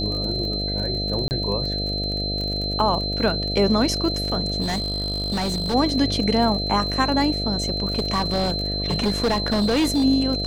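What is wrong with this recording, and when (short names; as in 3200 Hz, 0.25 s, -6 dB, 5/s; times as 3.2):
buzz 50 Hz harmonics 14 -28 dBFS
crackle 35/s -28 dBFS
tone 4100 Hz -26 dBFS
1.28–1.31 gap 29 ms
4.61–5.75 clipped -20.5 dBFS
7.96–10.05 clipped -16.5 dBFS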